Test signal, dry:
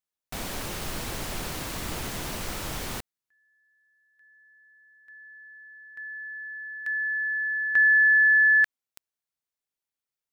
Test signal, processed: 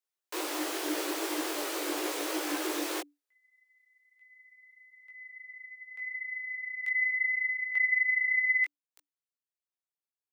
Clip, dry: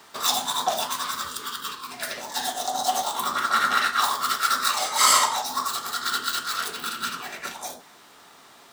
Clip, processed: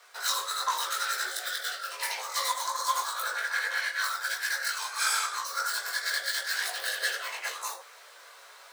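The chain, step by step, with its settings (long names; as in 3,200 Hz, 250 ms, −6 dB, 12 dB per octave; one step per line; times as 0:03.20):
frequency shifter +290 Hz
speech leveller within 5 dB 0.5 s
multi-voice chorus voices 6, 0.83 Hz, delay 19 ms, depth 2.8 ms
level −2.5 dB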